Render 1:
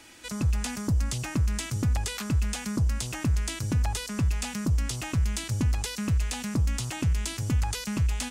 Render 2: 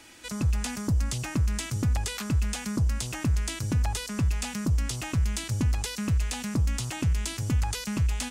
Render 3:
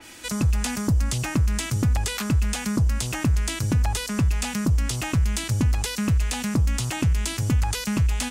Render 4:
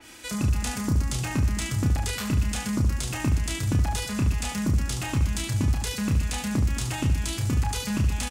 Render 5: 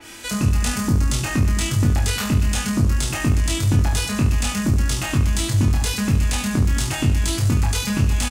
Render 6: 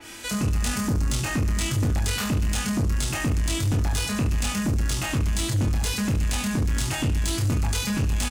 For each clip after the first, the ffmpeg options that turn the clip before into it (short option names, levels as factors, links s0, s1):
-af anull
-af "highshelf=f=10000:g=5.5,acompressor=threshold=0.0398:ratio=1.5,adynamicequalizer=threshold=0.00316:dfrequency=3800:dqfactor=0.7:tfrequency=3800:tqfactor=0.7:attack=5:release=100:ratio=0.375:range=1.5:mode=cutabove:tftype=highshelf,volume=2.11"
-af "aecho=1:1:30|72|130.8|213.1|328.4:0.631|0.398|0.251|0.158|0.1,volume=0.596"
-filter_complex "[0:a]acontrast=52,asoftclip=type=tanh:threshold=0.299,asplit=2[s0][s1];[s1]adelay=21,volume=0.631[s2];[s0][s2]amix=inputs=2:normalize=0"
-af "asoftclip=type=tanh:threshold=0.141,volume=0.841"